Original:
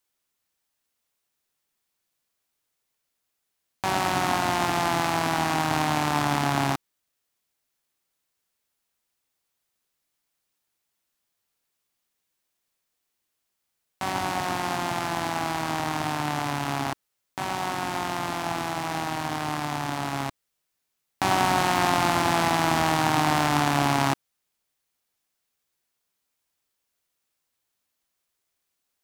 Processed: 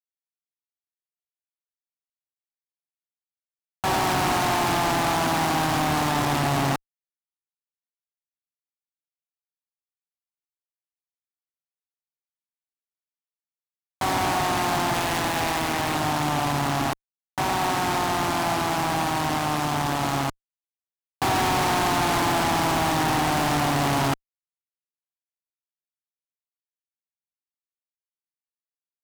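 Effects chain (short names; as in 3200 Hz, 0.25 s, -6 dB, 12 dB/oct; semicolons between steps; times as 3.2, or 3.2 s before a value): 14.94–15.95 self-modulated delay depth 0.62 ms; fuzz box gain 37 dB, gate -40 dBFS; gain -7 dB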